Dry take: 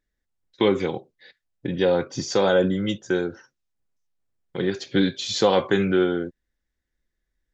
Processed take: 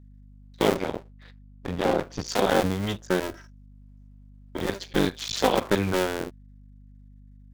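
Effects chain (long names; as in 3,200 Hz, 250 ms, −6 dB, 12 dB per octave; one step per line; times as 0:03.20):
sub-harmonics by changed cycles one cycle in 2, muted
0:00.76–0:02.27: high-shelf EQ 6,100 Hz −11.5 dB
0:03.22–0:04.58: comb filter 3.1 ms, depth 78%
mains hum 50 Hz, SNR 21 dB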